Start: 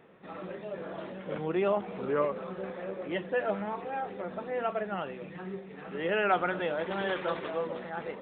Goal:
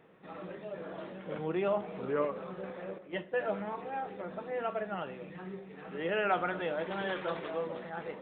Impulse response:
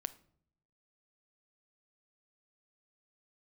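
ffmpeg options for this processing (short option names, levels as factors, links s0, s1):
-filter_complex "[0:a]asettb=1/sr,asplit=3[s0][s1][s2];[s0]atrim=end=2.984[s3];[s1]atrim=start=2.98:end=3.43,asetpts=PTS-STARTPTS,afade=t=in:d=0.004:c=qsin,afade=t=out:st=0.446:d=0.004:c=qsin,agate=range=0.282:threshold=0.0224:ratio=16:detection=peak[s4];[s2]atrim=start=3.426[s5];[s3][s4]acrossfade=d=0.004:c1=hsin:c2=qsin[s6];[s6][s5]acrossfade=d=0.004:c1=qsin:c2=hsin[s7];[1:a]atrim=start_sample=2205[s8];[s7][s8]afir=irnorm=-1:irlink=0,volume=0.841"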